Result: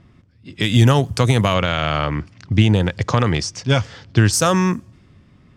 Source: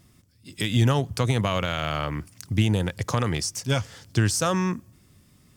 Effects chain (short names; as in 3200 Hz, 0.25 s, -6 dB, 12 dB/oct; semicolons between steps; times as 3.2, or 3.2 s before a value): low-pass opened by the level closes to 2400 Hz, open at -21 dBFS; 1.54–4.33 LPF 5200 Hz 12 dB/oct; gain +7.5 dB